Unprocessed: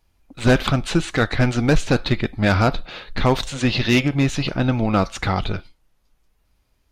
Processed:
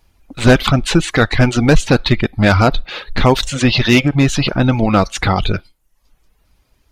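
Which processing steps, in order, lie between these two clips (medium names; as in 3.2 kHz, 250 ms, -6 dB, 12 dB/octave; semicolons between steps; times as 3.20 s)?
reverb removal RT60 0.55 s; in parallel at -1 dB: peak limiter -16.5 dBFS, peak gain reduction 9 dB; on the sum: trim +3.5 dB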